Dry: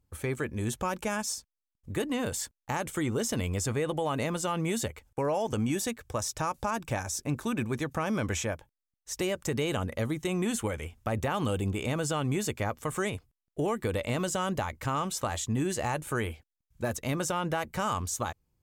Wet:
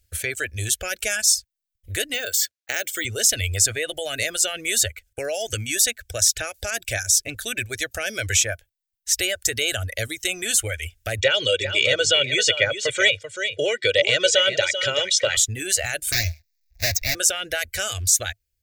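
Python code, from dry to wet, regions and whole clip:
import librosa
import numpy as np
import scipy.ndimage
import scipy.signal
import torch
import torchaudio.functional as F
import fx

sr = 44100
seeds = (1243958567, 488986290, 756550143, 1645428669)

y = fx.chain(x, sr, fx.bandpass_edges(low_hz=250.0, high_hz=7500.0),
    fx.resample_bad(factor=2, down='none', up='hold'), at=(2.14, 3.05))
y = fx.chain(y, sr, fx.cabinet(low_hz=140.0, low_slope=24, high_hz=6200.0, hz=(140.0, 240.0, 560.0, 1100.0, 2200.0, 3300.0), db=(8, 9, 9, 5, 5, 9)),
    fx.comb(ms=2.1, depth=0.73),
    fx.echo_single(ms=388, db=-8.0), at=(11.21, 15.37))
y = fx.chain(y, sr, fx.halfwave_hold(),
    fx.fixed_phaser(hz=2100.0, stages=8), at=(16.12, 17.15))
y = fx.dereverb_blind(y, sr, rt60_s=0.74)
y = fx.curve_eq(y, sr, hz=(100.0, 160.0, 400.0, 680.0, 1000.0, 1500.0, 4200.0), db=(0, -25, -8, -3, -30, 3, 9))
y = y * librosa.db_to_amplitude(8.0)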